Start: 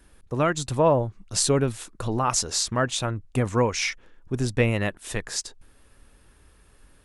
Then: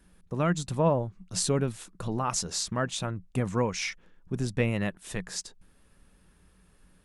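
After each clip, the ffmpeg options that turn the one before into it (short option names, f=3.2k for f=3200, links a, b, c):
-af "equalizer=f=180:t=o:w=0.3:g=14.5,volume=-6dB"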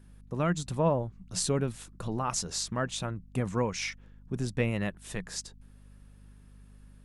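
-af "aeval=exprs='val(0)+0.00316*(sin(2*PI*50*n/s)+sin(2*PI*2*50*n/s)/2+sin(2*PI*3*50*n/s)/3+sin(2*PI*4*50*n/s)/4+sin(2*PI*5*50*n/s)/5)':c=same,volume=-2dB"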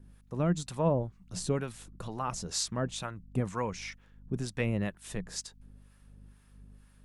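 -filter_complex "[0:a]acrossover=split=690[a][b];[a]aeval=exprs='val(0)*(1-0.7/2+0.7/2*cos(2*PI*2.1*n/s))':c=same[c];[b]aeval=exprs='val(0)*(1-0.7/2-0.7/2*cos(2*PI*2.1*n/s))':c=same[d];[c][d]amix=inputs=2:normalize=0,volume=1.5dB"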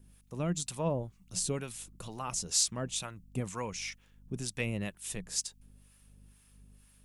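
-af "aexciter=amount=2.4:drive=5.4:freq=2.3k,volume=-4.5dB"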